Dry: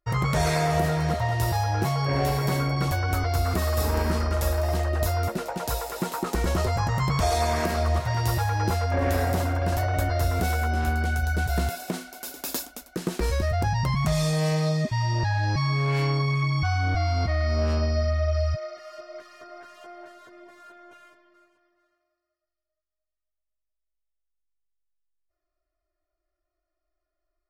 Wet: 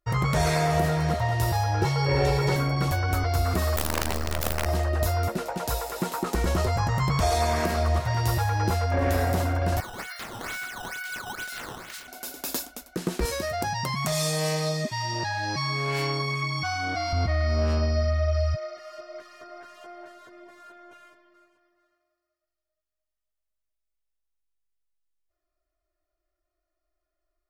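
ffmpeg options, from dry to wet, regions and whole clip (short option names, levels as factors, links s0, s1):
-filter_complex "[0:a]asettb=1/sr,asplit=3[s0][s1][s2];[s0]atrim=end=1.824[s3];[s1]atrim=start=1.82:end=2.56,asetpts=PTS-STARTPTS,afade=t=in:d=0.004:c=qsin,afade=t=out:st=0.736:d=0.004:c=qsin,acrossover=split=7700[s4][s5];[s5]acompressor=threshold=0.00158:ratio=4:attack=1:release=60[s6];[s4][s6]amix=inputs=2:normalize=0,aecho=1:1:2.2:0.91,atrim=end_sample=32634,aeval=exprs='sgn(val(0))*max(abs(val(0))-0.00158,0)':c=same[s7];[s2]atrim=start=2.556[s8];[s3][s7]acrossfade=d=0.004:c1=hsin:c2=qsin[s9];[s9][s8]acrossfade=d=0.004:c1=qsin:c2=hsin,asettb=1/sr,asplit=3[s10][s11][s12];[s10]atrim=end=3.764[s13];[s11]atrim=start=3.76:end=4.66,asetpts=PTS-STARTPTS,afade=t=in:d=0.004:c=qsin,afade=t=out:st=0.896:d=0.004:c=qsin,acrusher=bits=4:dc=4:mix=0:aa=0.000001,aeval=exprs='(mod(7.08*val(0)+1,2)-1)/7.08':c=same[s14];[s12]atrim=start=4.656[s15];[s13][s14]acrossfade=d=0.004:c1=hsin:c2=qsin[s16];[s16][s15]acrossfade=d=0.004:c1=qsin:c2=hsin,asettb=1/sr,asplit=3[s17][s18][s19];[s17]atrim=end=9.804[s20];[s18]atrim=start=9.8:end=12.08,asetpts=PTS-STARTPTS,afade=t=in:d=0.004:c=qsin,afade=t=out:st=2.276:d=0.004:c=qsin,highpass=f=1400:w=0.5412,highpass=f=1400:w=1.3066,acrusher=samples=11:mix=1:aa=0.000001:lfo=1:lforange=17.6:lforate=2.2,asplit=2[s21][s22];[s22]adelay=27,volume=0.2[s23];[s21][s23]amix=inputs=2:normalize=0,atrim=end_sample=100548[s24];[s19]atrim=start=12.076[s25];[s20][s24]acrossfade=d=0.004:c1=hsin:c2=qsin[s26];[s26][s25]acrossfade=d=0.004:c1=qsin:c2=hsin,asettb=1/sr,asplit=3[s27][s28][s29];[s27]atrim=end=13.254[s30];[s28]atrim=start=13.25:end=17.13,asetpts=PTS-STARTPTS,afade=t=in:d=0.004:c=qsin,afade=t=out:st=3.876:d=0.004:c=qsin,highpass=200,highshelf=f=5200:g=8.5[s31];[s29]atrim=start=17.126[s32];[s30][s31]acrossfade=d=0.004:c1=hsin:c2=qsin[s33];[s33][s32]acrossfade=d=0.004:c1=qsin:c2=hsin"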